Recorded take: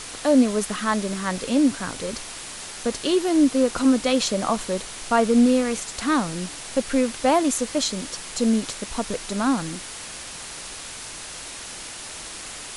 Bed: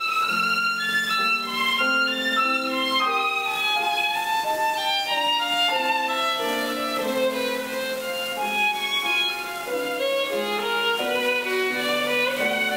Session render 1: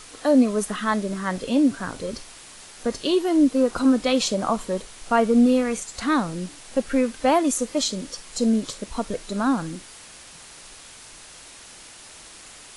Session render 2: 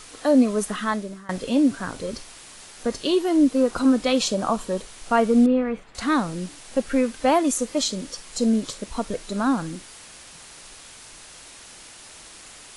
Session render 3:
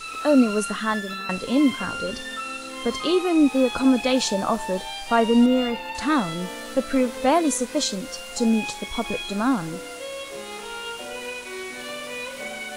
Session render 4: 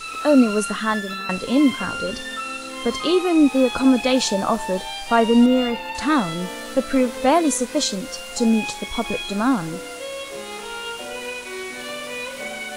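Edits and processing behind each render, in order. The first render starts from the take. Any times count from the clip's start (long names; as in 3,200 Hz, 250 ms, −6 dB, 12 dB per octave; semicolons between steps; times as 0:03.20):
noise reduction from a noise print 8 dB
0:00.81–0:01.29: fade out, to −22.5 dB; 0:04.17–0:04.80: notch filter 2,100 Hz; 0:05.46–0:05.95: high-frequency loss of the air 480 metres
mix in bed −10.5 dB
level +2.5 dB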